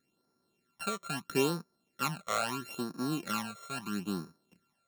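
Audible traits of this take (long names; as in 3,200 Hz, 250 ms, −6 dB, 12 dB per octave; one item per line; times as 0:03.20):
a buzz of ramps at a fixed pitch in blocks of 32 samples
phaser sweep stages 12, 0.76 Hz, lowest notch 270–2,900 Hz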